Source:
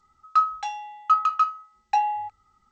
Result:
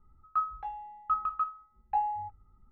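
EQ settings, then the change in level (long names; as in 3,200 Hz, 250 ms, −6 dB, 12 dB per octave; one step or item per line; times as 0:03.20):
low-pass filter 1,300 Hz 12 dB per octave
spectral tilt −4 dB per octave
notch filter 810 Hz, Q 23
−5.5 dB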